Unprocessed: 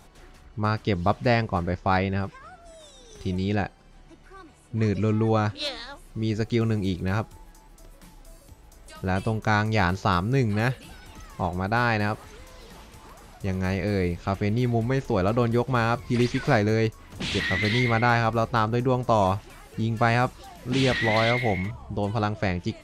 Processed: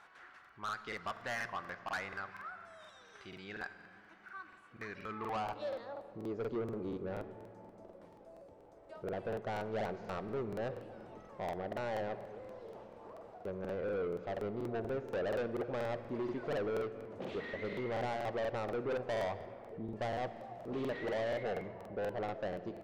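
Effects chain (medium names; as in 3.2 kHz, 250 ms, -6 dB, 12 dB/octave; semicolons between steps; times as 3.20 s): 19.22–19.91 s: resonances exaggerated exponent 1.5; in parallel at 0 dB: compression, threshold -38 dBFS, peak gain reduction 20.5 dB; on the sum: band-pass sweep 1.5 kHz -> 530 Hz, 5.07–5.70 s; saturation -31 dBFS, distortion -6 dB; on a send at -11.5 dB: reverberation RT60 2.7 s, pre-delay 47 ms; on the sum: crackling interface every 0.24 s, samples 2048, repeat, from 0.40 s; trim -2 dB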